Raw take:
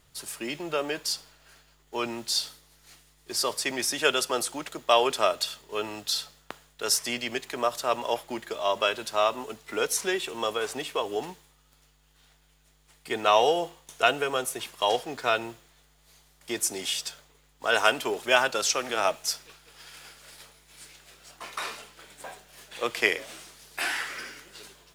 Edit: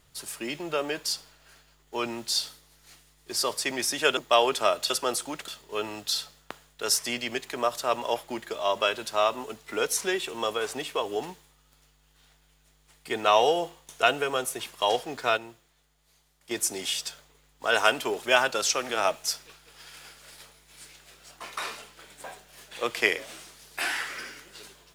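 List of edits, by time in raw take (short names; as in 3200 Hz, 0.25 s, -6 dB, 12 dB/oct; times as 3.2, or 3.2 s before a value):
4.17–4.75 move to 5.48
15.37–16.51 gain -7 dB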